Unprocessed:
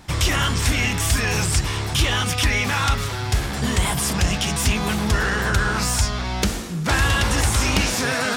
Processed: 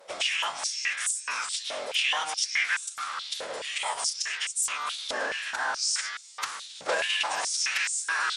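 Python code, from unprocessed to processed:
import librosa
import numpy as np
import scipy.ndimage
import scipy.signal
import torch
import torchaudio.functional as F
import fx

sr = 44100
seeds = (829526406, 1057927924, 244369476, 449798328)

y = fx.wow_flutter(x, sr, seeds[0], rate_hz=2.1, depth_cents=47.0)
y = fx.pitch_keep_formants(y, sr, semitones=-8.5)
y = fx.filter_held_highpass(y, sr, hz=4.7, low_hz=560.0, high_hz=7800.0)
y = y * 10.0 ** (-8.0 / 20.0)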